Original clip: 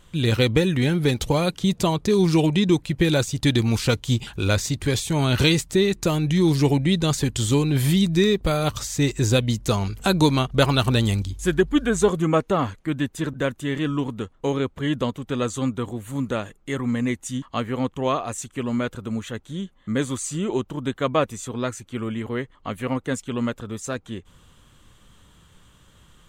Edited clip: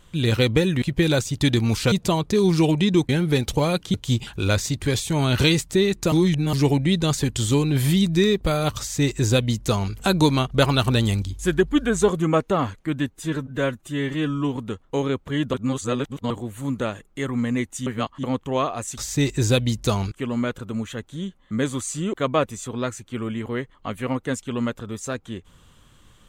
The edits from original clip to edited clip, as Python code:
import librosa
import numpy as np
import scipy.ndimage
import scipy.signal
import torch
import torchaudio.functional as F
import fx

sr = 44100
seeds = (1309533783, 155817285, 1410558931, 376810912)

y = fx.edit(x, sr, fx.swap(start_s=0.82, length_s=0.85, other_s=2.84, other_length_s=1.1),
    fx.reverse_span(start_s=6.12, length_s=0.41),
    fx.duplicate(start_s=8.79, length_s=1.14, to_s=18.48),
    fx.stretch_span(start_s=13.07, length_s=0.99, factor=1.5),
    fx.reverse_span(start_s=15.04, length_s=0.77),
    fx.reverse_span(start_s=17.37, length_s=0.37),
    fx.cut(start_s=20.5, length_s=0.44), tone=tone)